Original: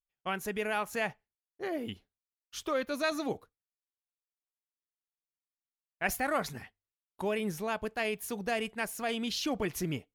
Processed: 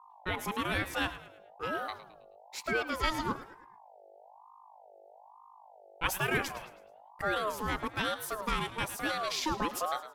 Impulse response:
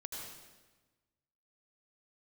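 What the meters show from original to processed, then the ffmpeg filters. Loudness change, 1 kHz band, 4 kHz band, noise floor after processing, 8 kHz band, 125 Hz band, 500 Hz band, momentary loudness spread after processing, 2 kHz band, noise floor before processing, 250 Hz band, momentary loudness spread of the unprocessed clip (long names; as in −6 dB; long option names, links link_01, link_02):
+0.5 dB, +3.5 dB, +2.5 dB, −56 dBFS, 0.0 dB, +1.5 dB, −3.0 dB, 10 LU, +2.0 dB, below −85 dBFS, −2.5 dB, 10 LU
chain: -filter_complex "[0:a]asplit=5[link_01][link_02][link_03][link_04][link_05];[link_02]adelay=107,afreqshift=87,volume=-14dB[link_06];[link_03]adelay=214,afreqshift=174,volume=-22dB[link_07];[link_04]adelay=321,afreqshift=261,volume=-29.9dB[link_08];[link_05]adelay=428,afreqshift=348,volume=-37.9dB[link_09];[link_01][link_06][link_07][link_08][link_09]amix=inputs=5:normalize=0,aeval=exprs='val(0)+0.00178*(sin(2*PI*50*n/s)+sin(2*PI*2*50*n/s)/2+sin(2*PI*3*50*n/s)/3+sin(2*PI*4*50*n/s)/4+sin(2*PI*5*50*n/s)/5)':channel_layout=same,aeval=exprs='val(0)*sin(2*PI*800*n/s+800*0.25/1.1*sin(2*PI*1.1*n/s))':channel_layout=same,volume=3dB"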